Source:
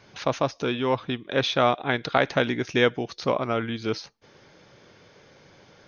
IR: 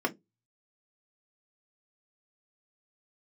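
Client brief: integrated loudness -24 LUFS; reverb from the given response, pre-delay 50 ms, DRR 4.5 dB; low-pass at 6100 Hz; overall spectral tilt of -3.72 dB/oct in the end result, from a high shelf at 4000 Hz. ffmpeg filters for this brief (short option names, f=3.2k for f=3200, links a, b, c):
-filter_complex "[0:a]lowpass=6.1k,highshelf=f=4k:g=-3,asplit=2[a][b];[1:a]atrim=start_sample=2205,adelay=50[c];[b][c]afir=irnorm=-1:irlink=0,volume=-13.5dB[d];[a][d]amix=inputs=2:normalize=0"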